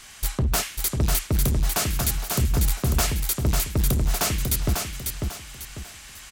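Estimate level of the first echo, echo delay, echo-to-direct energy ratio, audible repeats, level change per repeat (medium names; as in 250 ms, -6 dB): -4.5 dB, 546 ms, -4.0 dB, 4, -9.5 dB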